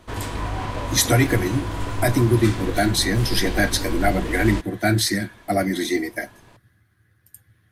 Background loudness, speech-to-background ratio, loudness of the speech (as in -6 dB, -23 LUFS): -29.0 LUFS, 7.5 dB, -21.5 LUFS